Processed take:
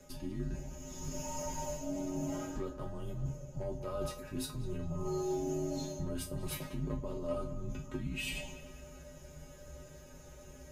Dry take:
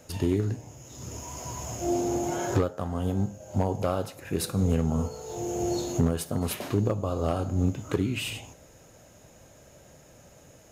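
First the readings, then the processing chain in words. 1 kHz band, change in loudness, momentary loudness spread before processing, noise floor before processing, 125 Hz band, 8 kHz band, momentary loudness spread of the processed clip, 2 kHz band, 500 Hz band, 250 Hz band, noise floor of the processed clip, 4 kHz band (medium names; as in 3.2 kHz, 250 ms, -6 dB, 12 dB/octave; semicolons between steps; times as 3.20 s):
-10.5 dB, -10.5 dB, 11 LU, -54 dBFS, -12.0 dB, -7.5 dB, 16 LU, -6.5 dB, -9.0 dB, -10.5 dB, -53 dBFS, -7.5 dB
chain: reverse; compression 6:1, threshold -35 dBFS, peak gain reduction 15 dB; reverse; bass shelf 230 Hz +11.5 dB; chord resonator A3 fifth, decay 0.22 s; frequency shift -68 Hz; filtered feedback delay 196 ms, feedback 52%, low-pass 3.3 kHz, level -13 dB; trim +12.5 dB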